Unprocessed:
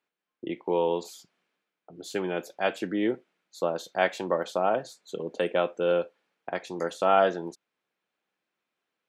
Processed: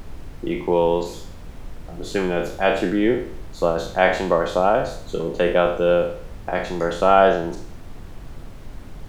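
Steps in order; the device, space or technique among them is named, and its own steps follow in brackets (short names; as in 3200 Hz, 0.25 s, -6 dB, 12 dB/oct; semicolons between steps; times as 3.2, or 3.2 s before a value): spectral trails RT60 0.56 s; car interior (bell 140 Hz +7 dB 0.72 oct; high shelf 4600 Hz -7 dB; brown noise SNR 12 dB); gain +6.5 dB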